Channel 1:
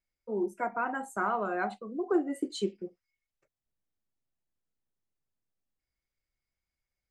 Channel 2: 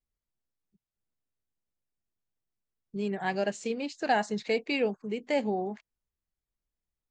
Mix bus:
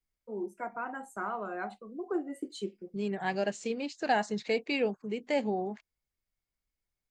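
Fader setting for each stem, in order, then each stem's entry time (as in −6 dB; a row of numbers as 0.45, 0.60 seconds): −5.5, −1.5 decibels; 0.00, 0.00 seconds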